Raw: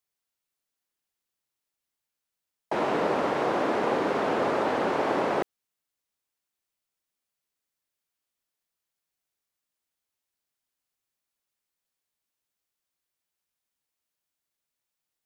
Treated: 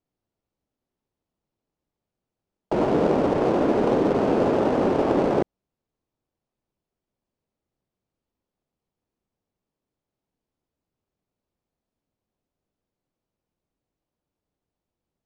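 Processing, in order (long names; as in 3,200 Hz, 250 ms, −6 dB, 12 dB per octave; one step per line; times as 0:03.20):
in parallel at −5 dB: sample-rate reduction 2,000 Hz, jitter 20%
on the sum: low-pass filter 6,000 Hz 12 dB per octave
tilt shelving filter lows +7 dB, about 750 Hz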